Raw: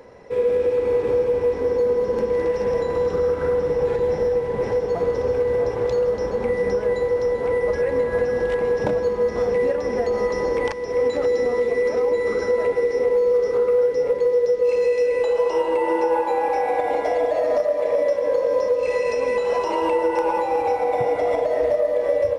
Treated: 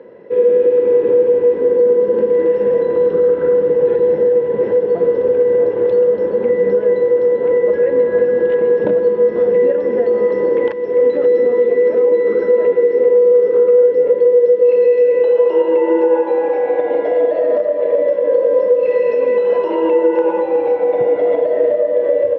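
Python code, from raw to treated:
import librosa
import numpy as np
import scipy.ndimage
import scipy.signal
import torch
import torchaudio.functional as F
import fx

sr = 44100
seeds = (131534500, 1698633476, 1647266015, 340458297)

y = fx.cabinet(x, sr, low_hz=190.0, low_slope=12, high_hz=2900.0, hz=(190.0, 350.0, 500.0, 780.0, 1200.0, 2300.0), db=(5, 7, 4, -9, -8, -9))
y = y * 10.0 ** (4.0 / 20.0)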